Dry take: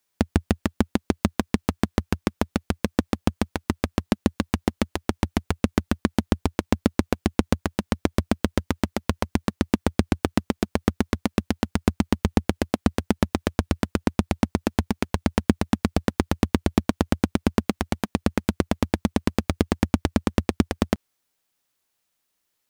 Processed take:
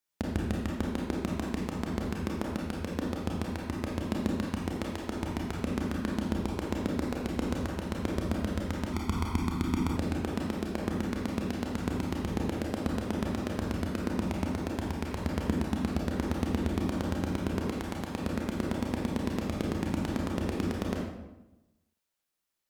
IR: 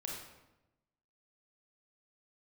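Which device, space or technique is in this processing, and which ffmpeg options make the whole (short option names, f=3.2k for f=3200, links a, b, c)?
bathroom: -filter_complex "[1:a]atrim=start_sample=2205[a];[0:a][a]afir=irnorm=-1:irlink=0,asettb=1/sr,asplit=3[b][c][d];[b]atrim=end=8.934[e];[c]atrim=start=8.93:end=9.97,asetpts=PTS-STARTPTS,afade=t=in:d=0.004:c=qsin,afade=t=out:st=1.036:d=0.004:c=qsin,aecho=1:1:0.9:0.81,atrim=end_sample=45864[f];[d]atrim=start=9.966[g];[e][f]acrossfade=d=0.004:c1=hsin:c2=qsin[h];[h][g]acrossfade=d=0.004:c1=qsin:c2=hsin,volume=-7.5dB"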